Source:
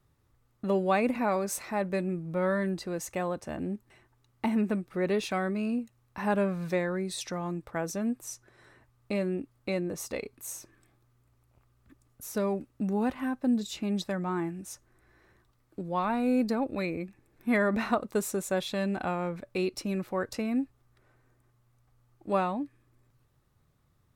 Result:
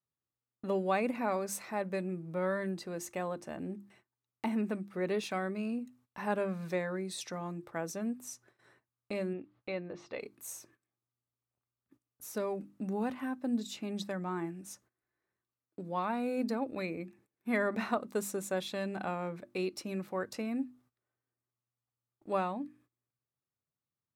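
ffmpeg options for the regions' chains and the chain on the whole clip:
-filter_complex "[0:a]asettb=1/sr,asplit=3[s0][s1][s2];[s0]atrim=end=9.334[s3];[s1]atrim=start=9.33:end=10.2,asetpts=PTS-STARTPTS,afade=t=in:d=0.004:c=qsin,afade=t=out:st=0.866:d=0.004:c=qsin,equalizer=f=230:w=1.3:g=-6,acompressor=mode=upward:threshold=0.00178:ratio=2.5:attack=3.2:release=140:knee=2.83:detection=peak,lowpass=f=4000:w=0.5412,lowpass=f=4000:w=1.3066[s4];[s2]atrim=start=10.196[s5];[s3][s4]acrossfade=d=0.004:c1=hsin:c2=qsin[s6];[s6][s5]acrossfade=d=0.004:c1=qsin:c2=hsin,highpass=130,bandreject=f=50:t=h:w=6,bandreject=f=100:t=h:w=6,bandreject=f=150:t=h:w=6,bandreject=f=200:t=h:w=6,bandreject=f=250:t=h:w=6,bandreject=f=300:t=h:w=6,bandreject=f=350:t=h:w=6,agate=range=0.112:threshold=0.00126:ratio=16:detection=peak,volume=0.596"

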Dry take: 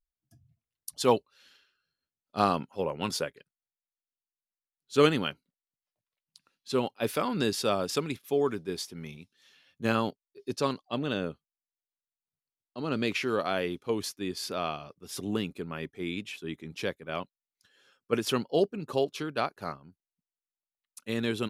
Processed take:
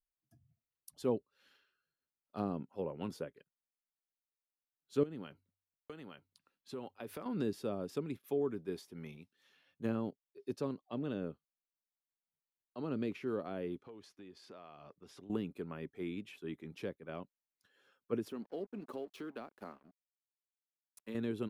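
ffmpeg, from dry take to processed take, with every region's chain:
-filter_complex "[0:a]asettb=1/sr,asplit=3[s0][s1][s2];[s0]atrim=end=5.034[s3];[s1]atrim=start=5.03:end=7.26,asetpts=PTS-STARTPTS,afade=t=in:d=0.004:c=qsin,afade=t=out:st=2.226:d=0.004:c=qsin,bandreject=f=47.76:t=h:w=4,bandreject=f=95.52:t=h:w=4,acompressor=threshold=0.0224:ratio=6:attack=3.2:release=140:knee=1:detection=peak,aecho=1:1:866:0.447,atrim=end_sample=98343[s4];[s2]atrim=start=7.256[s5];[s3][s4]acrossfade=d=0.004:c1=hsin:c2=qsin[s6];[s6][s5]acrossfade=d=0.004:c1=qsin:c2=hsin,asettb=1/sr,asplit=3[s7][s8][s9];[s7]atrim=end=13.804[s10];[s8]atrim=start=13.8:end=15.3,asetpts=PTS-STARTPTS,afade=t=in:d=0.004:c=qsin,afade=t=out:st=1.496:d=0.004:c=qsin,lowpass=6300,acompressor=threshold=0.00631:ratio=8:attack=3.2:release=140:knee=1:detection=peak[s11];[s9]atrim=start=15.296[s12];[s10][s11]acrossfade=d=0.004:c1=hsin:c2=qsin[s13];[s13][s12]acrossfade=d=0.004:c1=qsin:c2=hsin,asettb=1/sr,asplit=3[s14][s15][s16];[s14]atrim=end=18.284[s17];[s15]atrim=start=18.28:end=21.15,asetpts=PTS-STARTPTS,afade=t=in:d=0.004:c=qsin,afade=t=out:st=2.866:d=0.004:c=qsin,lowshelf=f=170:t=q:w=3:g=-7,acompressor=threshold=0.0158:ratio=2.5:attack=3.2:release=140:knee=1:detection=peak,aeval=exprs='sgn(val(0))*max(abs(val(0))-0.00188,0)':c=same[s18];[s16]atrim=start=21.146[s19];[s17][s18]acrossfade=d=0.004:c1=hsin:c2=qsin[s20];[s20][s19]acrossfade=d=0.004:c1=qsin:c2=hsin,lowshelf=f=160:g=-7,acrossover=split=440[s21][s22];[s22]acompressor=threshold=0.00891:ratio=6[s23];[s21][s23]amix=inputs=2:normalize=0,equalizer=f=5900:w=0.44:g=-10,volume=0.708"

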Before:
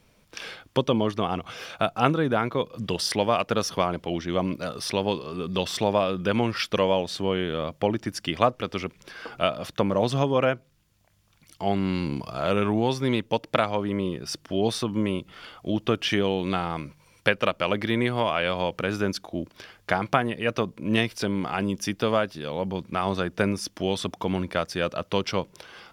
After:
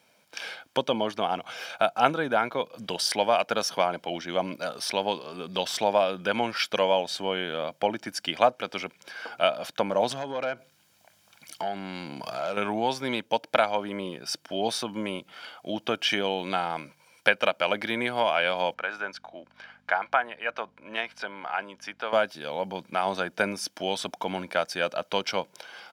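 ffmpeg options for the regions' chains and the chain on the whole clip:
-filter_complex "[0:a]asettb=1/sr,asplit=3[s0][s1][s2];[s0]atrim=end=10.114[s3];[s1]atrim=start=10.11:end=12.57,asetpts=PTS-STARTPTS,afade=t=in:d=0.004:c=qsin,afade=t=out:st=2.456:d=0.004:c=qsin,acompressor=threshold=0.0158:ratio=3:attack=3.2:release=140:knee=1:detection=peak,aeval=exprs='0.0841*sin(PI/2*1.58*val(0)/0.0841)':c=same[s4];[s2]atrim=start=12.566[s5];[s3][s4]acrossfade=d=0.004:c1=hsin:c2=qsin[s6];[s6][s5]acrossfade=d=0.004:c1=qsin:c2=hsin,asettb=1/sr,asplit=3[s7][s8][s9];[s7]atrim=end=18.744[s10];[s8]atrim=start=18.74:end=22.13,asetpts=PTS-STARTPTS,afade=t=in:d=0.004:c=qsin,afade=t=out:st=3.386:d=0.004:c=qsin,bandpass=f=1300:t=q:w=0.93,aeval=exprs='val(0)+0.00355*(sin(2*PI*50*n/s)+sin(2*PI*2*50*n/s)/2+sin(2*PI*3*50*n/s)/3+sin(2*PI*4*50*n/s)/4+sin(2*PI*5*50*n/s)/5)':c=same[s11];[s9]atrim=start=22.126[s12];[s10][s11]acrossfade=d=0.004:c1=hsin:c2=qsin[s13];[s13][s12]acrossfade=d=0.004:c1=qsin:c2=hsin,highpass=320,aecho=1:1:1.3:0.45"

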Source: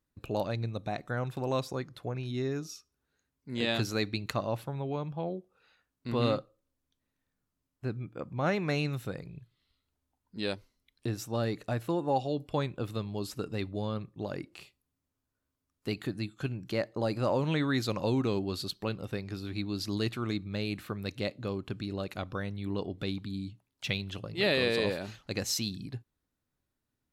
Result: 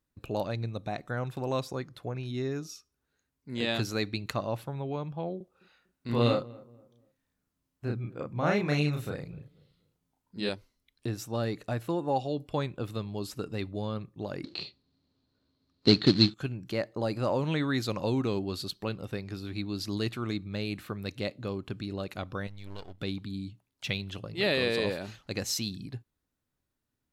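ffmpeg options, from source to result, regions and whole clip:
-filter_complex "[0:a]asettb=1/sr,asplit=3[s0][s1][s2];[s0]atrim=end=5.374[s3];[s1]atrim=start=5.37:end=10.49,asetpts=PTS-STARTPTS,afade=t=in:d=0.004:c=qsin,afade=t=out:st=5.116:d=0.004:c=qsin,asplit=2[s4][s5];[s5]adelay=34,volume=0.794[s6];[s4][s6]amix=inputs=2:normalize=0,atrim=end_sample=225792,asplit=2[s7][s8];[s8]adelay=241,lowpass=f=960:p=1,volume=0.0891,asplit=2[s9][s10];[s10]adelay=241,lowpass=f=960:p=1,volume=0.35,asplit=2[s11][s12];[s12]adelay=241,lowpass=f=960:p=1,volume=0.35[s13];[s7][s9][s11][s13]amix=inputs=4:normalize=0,atrim=end_sample=225792[s14];[s2]atrim=start=10.486[s15];[s3][s14]acrossfade=d=0.004:c1=hsin:c2=qsin[s16];[s16][s15]acrossfade=d=0.004:c1=qsin:c2=hsin,asettb=1/sr,asplit=3[s17][s18][s19];[s17]atrim=end=14.444[s20];[s18]atrim=start=14.44:end=16.34,asetpts=PTS-STARTPTS,afade=t=in:d=0.004:c=qsin,afade=t=out:st=1.896:d=0.004:c=qsin,equalizer=f=240:w=0.31:g=13.5,acrusher=bits=4:mode=log:mix=0:aa=0.000001,lowpass=f=4200:t=q:w=12[s21];[s19]atrim=start=16.336[s22];[s20][s21]acrossfade=d=0.004:c1=hsin:c2=qsin[s23];[s23][s22]acrossfade=d=0.004:c1=qsin:c2=hsin,asettb=1/sr,asplit=3[s24][s25][s26];[s24]atrim=end=22.474[s27];[s25]atrim=start=22.47:end=23.01,asetpts=PTS-STARTPTS,afade=t=in:d=0.004:c=qsin,afade=t=out:st=0.536:d=0.004:c=qsin,aeval=exprs='if(lt(val(0),0),0.251*val(0),val(0))':c=same,equalizer=f=280:t=o:w=2.4:g=-11.5,bandreject=f=1200:w=23[s28];[s26]atrim=start=23.006[s29];[s27][s28]acrossfade=d=0.004:c1=hsin:c2=qsin[s30];[s30][s29]acrossfade=d=0.004:c1=qsin:c2=hsin"

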